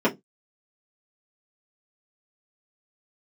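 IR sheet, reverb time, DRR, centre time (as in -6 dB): 0.15 s, -7.0 dB, 13 ms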